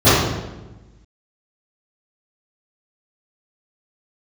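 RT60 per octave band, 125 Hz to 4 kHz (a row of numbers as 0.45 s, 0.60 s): 1.5 s, 1.4 s, 1.2 s, 1.0 s, 0.90 s, 0.80 s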